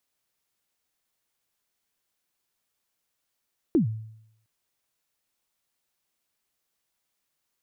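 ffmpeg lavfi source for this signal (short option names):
-f lavfi -i "aevalsrc='0.178*pow(10,-3*t/0.75)*sin(2*PI*(370*0.116/log(110/370)*(exp(log(110/370)*min(t,0.116)/0.116)-1)+110*max(t-0.116,0)))':d=0.71:s=44100"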